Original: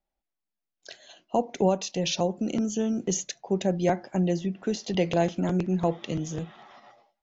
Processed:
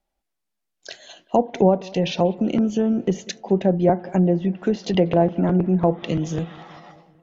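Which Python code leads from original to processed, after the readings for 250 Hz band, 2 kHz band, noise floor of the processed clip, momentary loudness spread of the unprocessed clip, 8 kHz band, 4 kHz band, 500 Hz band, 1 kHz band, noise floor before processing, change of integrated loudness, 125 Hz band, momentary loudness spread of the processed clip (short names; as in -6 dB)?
+7.0 dB, +2.5 dB, -79 dBFS, 7 LU, n/a, +1.0 dB, +7.0 dB, +6.0 dB, under -85 dBFS, +6.5 dB, +7.0 dB, 10 LU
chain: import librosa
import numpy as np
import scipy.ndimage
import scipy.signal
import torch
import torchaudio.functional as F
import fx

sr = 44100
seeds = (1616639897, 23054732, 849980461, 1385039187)

p1 = fx.env_lowpass_down(x, sr, base_hz=1000.0, full_db=-20.5)
p2 = p1 + fx.echo_bbd(p1, sr, ms=192, stages=4096, feedback_pct=63, wet_db=-23, dry=0)
y = p2 * 10.0 ** (7.0 / 20.0)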